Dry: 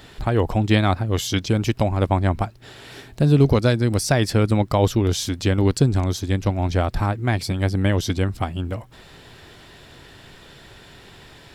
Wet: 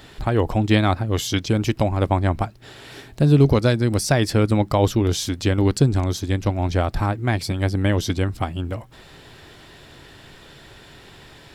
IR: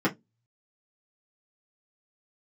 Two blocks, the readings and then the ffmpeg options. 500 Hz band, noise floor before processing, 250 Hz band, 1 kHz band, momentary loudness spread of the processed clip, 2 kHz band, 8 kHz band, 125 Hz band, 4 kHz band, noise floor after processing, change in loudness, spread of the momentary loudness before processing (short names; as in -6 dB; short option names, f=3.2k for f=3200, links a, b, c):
+0.5 dB, -46 dBFS, +0.5 dB, +0.5 dB, 9 LU, 0.0 dB, 0.0 dB, 0.0 dB, 0.0 dB, -46 dBFS, 0.0 dB, 9 LU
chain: -filter_complex "[0:a]asplit=2[a][b];[1:a]atrim=start_sample=2205[c];[b][c]afir=irnorm=-1:irlink=0,volume=-34.5dB[d];[a][d]amix=inputs=2:normalize=0"